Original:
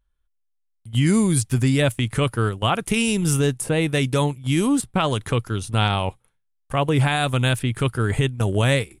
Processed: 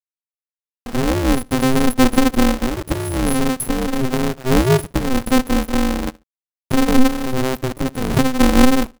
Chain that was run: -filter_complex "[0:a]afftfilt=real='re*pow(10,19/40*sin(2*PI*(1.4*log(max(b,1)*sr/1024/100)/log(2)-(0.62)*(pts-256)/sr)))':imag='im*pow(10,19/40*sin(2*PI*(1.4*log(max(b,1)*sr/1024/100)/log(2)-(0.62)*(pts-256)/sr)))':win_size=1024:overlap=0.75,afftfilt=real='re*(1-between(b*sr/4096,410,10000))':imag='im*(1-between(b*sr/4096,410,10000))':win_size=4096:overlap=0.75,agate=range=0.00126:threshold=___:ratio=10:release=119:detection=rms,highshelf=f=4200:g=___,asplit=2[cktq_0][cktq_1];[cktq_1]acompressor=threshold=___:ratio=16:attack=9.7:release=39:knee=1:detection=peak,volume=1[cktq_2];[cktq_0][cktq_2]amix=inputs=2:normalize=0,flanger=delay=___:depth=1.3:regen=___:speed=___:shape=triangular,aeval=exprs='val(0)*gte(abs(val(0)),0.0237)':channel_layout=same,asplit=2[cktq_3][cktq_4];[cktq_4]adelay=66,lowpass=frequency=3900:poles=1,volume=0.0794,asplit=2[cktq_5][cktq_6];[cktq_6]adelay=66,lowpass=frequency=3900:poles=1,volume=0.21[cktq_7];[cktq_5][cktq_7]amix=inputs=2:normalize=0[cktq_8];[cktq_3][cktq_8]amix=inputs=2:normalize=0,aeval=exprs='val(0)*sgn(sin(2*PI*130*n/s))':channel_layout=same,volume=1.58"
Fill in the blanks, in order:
0.01, -5, 0.0501, 0.7, 32, 0.44